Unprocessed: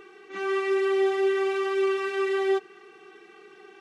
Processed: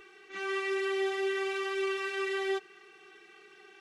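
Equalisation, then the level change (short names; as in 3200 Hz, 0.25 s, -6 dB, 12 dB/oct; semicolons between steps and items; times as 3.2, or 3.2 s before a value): graphic EQ 125/250/500/1000 Hz -5/-9/-6/-6 dB; 0.0 dB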